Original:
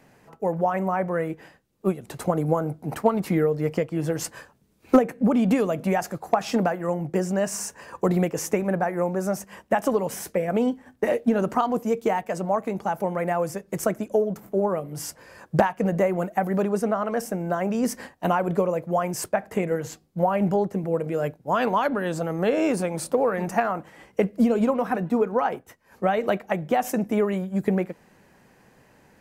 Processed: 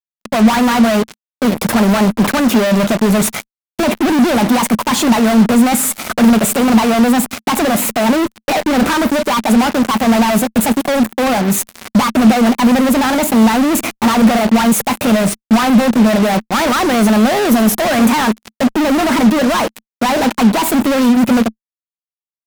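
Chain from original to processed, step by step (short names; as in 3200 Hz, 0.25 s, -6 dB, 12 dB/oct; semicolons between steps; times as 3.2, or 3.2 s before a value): thin delay 0.106 s, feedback 70%, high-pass 4400 Hz, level -19.5 dB; varispeed +30%; fuzz box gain 46 dB, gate -40 dBFS; bell 220 Hz +10.5 dB 0.37 oct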